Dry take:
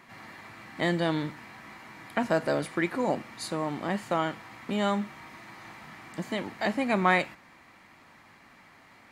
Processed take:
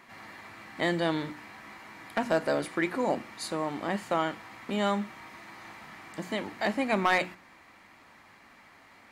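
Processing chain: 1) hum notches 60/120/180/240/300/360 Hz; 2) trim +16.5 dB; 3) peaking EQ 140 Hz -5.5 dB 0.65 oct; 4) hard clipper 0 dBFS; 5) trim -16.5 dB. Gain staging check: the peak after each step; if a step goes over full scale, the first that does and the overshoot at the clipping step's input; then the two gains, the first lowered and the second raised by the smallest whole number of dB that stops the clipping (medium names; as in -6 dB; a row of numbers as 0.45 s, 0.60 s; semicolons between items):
-8.5 dBFS, +8.0 dBFS, +8.0 dBFS, 0.0 dBFS, -16.5 dBFS; step 2, 8.0 dB; step 2 +8.5 dB, step 5 -8.5 dB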